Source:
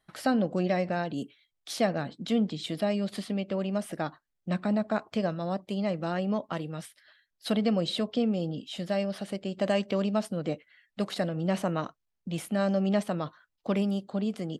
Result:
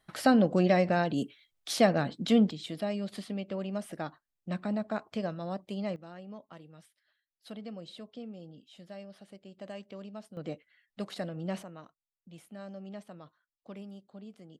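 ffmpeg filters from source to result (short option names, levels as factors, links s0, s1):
-af "asetnsamples=n=441:p=0,asendcmd='2.51 volume volume -5dB;5.96 volume volume -16.5dB;10.37 volume volume -7dB;11.63 volume volume -17.5dB',volume=1.41"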